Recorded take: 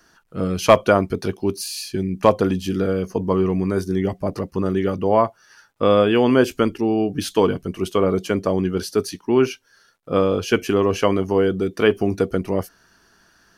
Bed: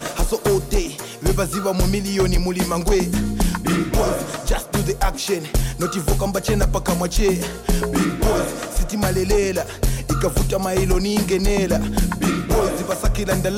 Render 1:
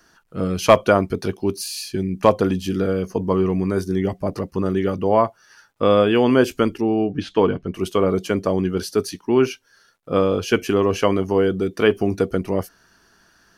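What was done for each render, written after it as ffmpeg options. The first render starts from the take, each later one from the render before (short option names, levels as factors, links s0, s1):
-filter_complex "[0:a]asettb=1/sr,asplit=3[s0][s1][s2];[s0]atrim=end=6.824[s3];[s1]atrim=start=6.82:end=7.74,asetpts=PTS-STARTPTS,afade=t=in:d=0.004:c=qsin,afade=t=out:st=0.916:d=0.004:c=qsin,lowpass=3000[s4];[s2]atrim=start=7.736[s5];[s3][s4]acrossfade=d=0.004:c1=hsin:c2=qsin[s6];[s6][s5]acrossfade=d=0.004:c1=qsin:c2=hsin"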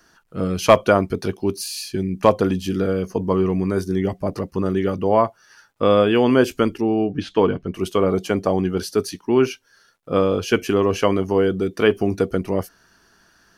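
-filter_complex "[0:a]asettb=1/sr,asplit=3[s0][s1][s2];[s0]atrim=end=8.104[s3];[s1]atrim=start=8.1:end=8.78,asetpts=PTS-STARTPTS,afade=t=in:d=0.004:c=qsin,afade=t=out:st=0.676:d=0.004:c=qsin,equalizer=f=770:w=4.6:g=7.5[s4];[s2]atrim=start=8.776[s5];[s3][s4]acrossfade=d=0.004:c1=hsin:c2=qsin[s6];[s6][s5]acrossfade=d=0.004:c1=qsin:c2=hsin"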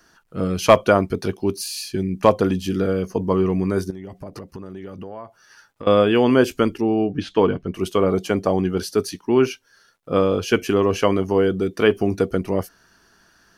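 -filter_complex "[0:a]asettb=1/sr,asplit=3[s0][s1][s2];[s0]atrim=end=3.904[s3];[s1]atrim=start=3.9:end=5.87,asetpts=PTS-STARTPTS,afade=t=in:d=0.004:c=qsin,afade=t=out:st=1.966:d=0.004:c=qsin,acompressor=threshold=0.0282:ratio=8:attack=3.2:release=140:knee=1:detection=peak[s4];[s2]atrim=start=5.866[s5];[s3][s4]acrossfade=d=0.004:c1=hsin:c2=qsin[s6];[s6][s5]acrossfade=d=0.004:c1=qsin:c2=hsin"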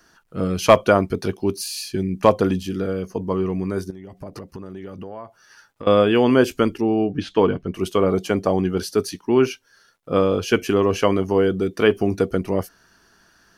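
-filter_complex "[0:a]asplit=3[s0][s1][s2];[s0]atrim=end=2.632[s3];[s1]atrim=start=2.628:end=4.172,asetpts=PTS-STARTPTS,volume=0.668[s4];[s2]atrim=start=4.168[s5];[s3][s4]acrossfade=d=0.004:c1=hsin:c2=hsin[s6];[s6][s5]acrossfade=d=0.004:c1=hsin:c2=hsin"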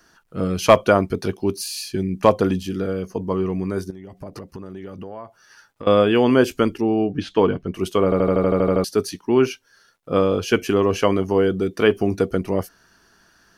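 -filter_complex "[0:a]asplit=11[s0][s1][s2][s3][s4][s5][s6][s7][s8][s9][s10];[s0]atrim=end=8.122[s11];[s1]atrim=start=8.038:end=8.122[s12];[s2]atrim=start=8.038:end=8.122[s13];[s3]atrim=start=8.038:end=8.122[s14];[s4]atrim=start=8.038:end=8.122[s15];[s5]atrim=start=8.038:end=8.122[s16];[s6]atrim=start=8.038:end=8.122[s17];[s7]atrim=start=8.038:end=8.122[s18];[s8]atrim=start=8.038:end=8.122[s19];[s9]atrim=start=8.038:end=8.122[s20];[s10]atrim=start=8.838[s21];[s11][s12]acrossfade=d=0.004:c1=hsin:c2=hsin[s22];[s22][s13]acrossfade=d=0.004:c1=hsin:c2=hsin[s23];[s23][s14]acrossfade=d=0.004:c1=hsin:c2=hsin[s24];[s24][s15]acrossfade=d=0.004:c1=hsin:c2=hsin[s25];[s25][s16]acrossfade=d=0.004:c1=hsin:c2=hsin[s26];[s26][s17]acrossfade=d=0.004:c1=hsin:c2=hsin[s27];[s27][s18]acrossfade=d=0.004:c1=hsin:c2=hsin[s28];[s28][s19]acrossfade=d=0.004:c1=hsin:c2=hsin[s29];[s29][s20]acrossfade=d=0.004:c1=hsin:c2=hsin[s30];[s30][s21]acrossfade=d=0.004:c1=hsin:c2=hsin"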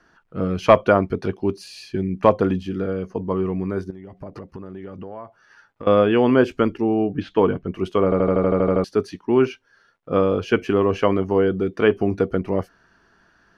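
-af "lowpass=2100,aemphasis=mode=production:type=50fm"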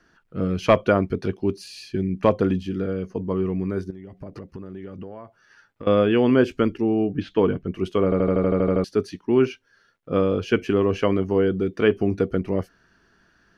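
-af "equalizer=f=890:w=1:g=-6.5"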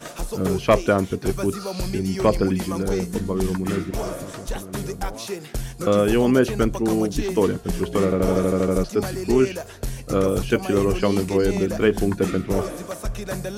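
-filter_complex "[1:a]volume=0.355[s0];[0:a][s0]amix=inputs=2:normalize=0"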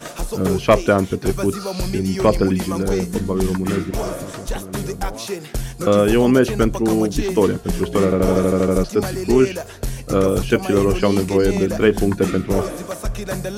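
-af "volume=1.5,alimiter=limit=0.794:level=0:latency=1"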